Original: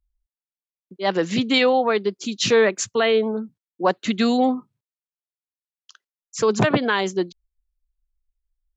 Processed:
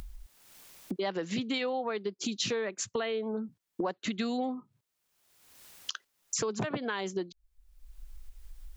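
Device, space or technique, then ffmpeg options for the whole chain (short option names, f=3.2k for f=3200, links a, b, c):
upward and downward compression: -af "acompressor=mode=upward:threshold=-21dB:ratio=2.5,acompressor=threshold=-30dB:ratio=8"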